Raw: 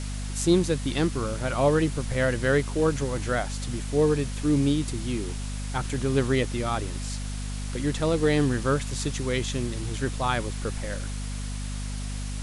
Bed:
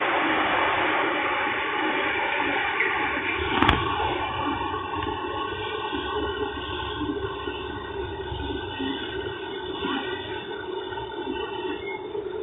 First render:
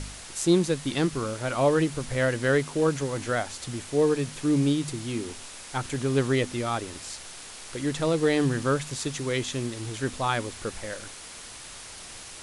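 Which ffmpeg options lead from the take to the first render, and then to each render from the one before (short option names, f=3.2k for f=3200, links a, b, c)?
-af "bandreject=f=50:t=h:w=4,bandreject=f=100:t=h:w=4,bandreject=f=150:t=h:w=4,bandreject=f=200:t=h:w=4,bandreject=f=250:t=h:w=4"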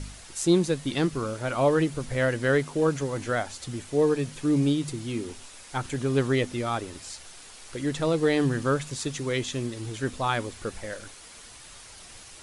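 -af "afftdn=nr=6:nf=-43"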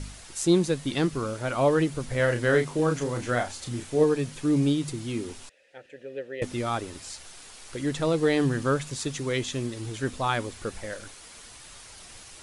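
-filter_complex "[0:a]asettb=1/sr,asplit=3[a][b][c];[a]atrim=end=2.164[d];[b]atrim=start=2.16:end=4.04,asetpts=PTS-STARTPTS,afade=t=in:d=0.004:c=qsin,afade=t=out:st=1.876:d=0.004:c=qsin,asplit=2[e][f];[f]adelay=33,volume=-6dB[g];[e][g]amix=inputs=2:normalize=0,atrim=end_sample=82908[h];[c]atrim=start=4.036[i];[d][h]acrossfade=d=0.004:c1=hsin:c2=qsin[j];[j][i]acrossfade=d=0.004:c1=qsin:c2=hsin,asettb=1/sr,asplit=3[k][l][m];[k]atrim=end=5.494[n];[l]atrim=start=5.49:end=6.42,asetpts=PTS-STARTPTS,afade=t=in:d=0.004:c=qsin,afade=t=out:st=0.926:d=0.004:c=qsin,asplit=3[o][p][q];[o]bandpass=f=530:t=q:w=8,volume=0dB[r];[p]bandpass=f=1.84k:t=q:w=8,volume=-6dB[s];[q]bandpass=f=2.48k:t=q:w=8,volume=-9dB[t];[r][s][t]amix=inputs=3:normalize=0[u];[m]atrim=start=6.416[v];[n][u]acrossfade=d=0.004:c1=hsin:c2=qsin[w];[w][v]acrossfade=d=0.004:c1=qsin:c2=hsin"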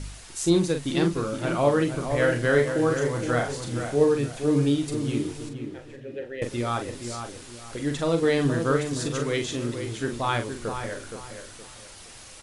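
-filter_complex "[0:a]asplit=2[a][b];[b]adelay=42,volume=-7dB[c];[a][c]amix=inputs=2:normalize=0,asplit=2[d][e];[e]adelay=469,lowpass=f=2k:p=1,volume=-7dB,asplit=2[f][g];[g]adelay=469,lowpass=f=2k:p=1,volume=0.34,asplit=2[h][i];[i]adelay=469,lowpass=f=2k:p=1,volume=0.34,asplit=2[j][k];[k]adelay=469,lowpass=f=2k:p=1,volume=0.34[l];[f][h][j][l]amix=inputs=4:normalize=0[m];[d][m]amix=inputs=2:normalize=0"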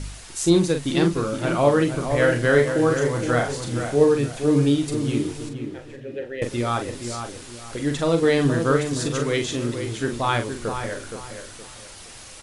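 -af "volume=3.5dB"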